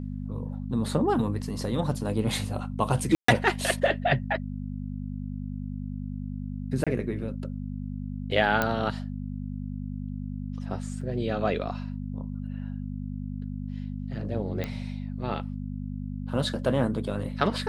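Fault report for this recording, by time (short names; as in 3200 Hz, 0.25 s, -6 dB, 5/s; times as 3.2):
hum 50 Hz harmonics 5 -34 dBFS
3.15–3.28 gap 0.134 s
6.84–6.87 gap 26 ms
8.62 pop -10 dBFS
11.01 gap 3.9 ms
14.64 pop -17 dBFS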